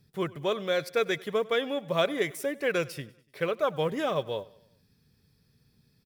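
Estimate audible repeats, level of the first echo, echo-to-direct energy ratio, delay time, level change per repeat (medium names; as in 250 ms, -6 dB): 3, -22.0 dB, -20.5 dB, 97 ms, -5.5 dB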